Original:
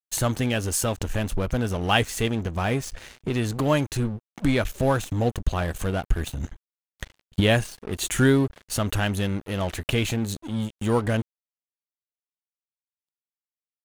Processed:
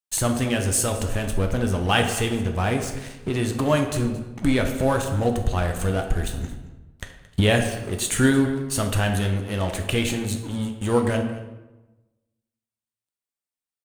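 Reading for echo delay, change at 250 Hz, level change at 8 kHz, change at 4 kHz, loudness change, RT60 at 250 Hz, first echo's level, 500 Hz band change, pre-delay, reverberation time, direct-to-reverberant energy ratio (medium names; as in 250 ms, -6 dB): 223 ms, +2.0 dB, +4.0 dB, +1.0 dB, +1.5 dB, 1.3 s, -18.0 dB, +2.0 dB, 8 ms, 1.1 s, 4.0 dB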